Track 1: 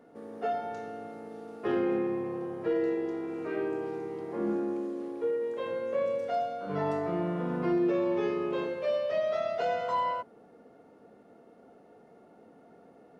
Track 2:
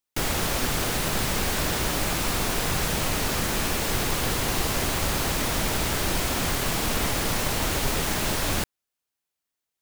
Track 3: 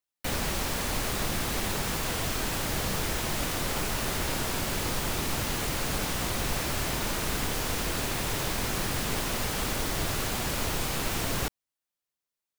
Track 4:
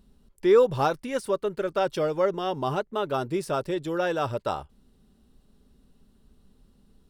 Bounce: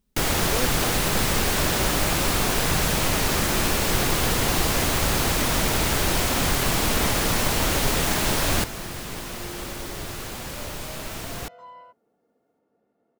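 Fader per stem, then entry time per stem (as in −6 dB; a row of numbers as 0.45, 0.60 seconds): −15.5, +3.0, −4.0, −14.0 decibels; 1.70, 0.00, 0.00, 0.00 seconds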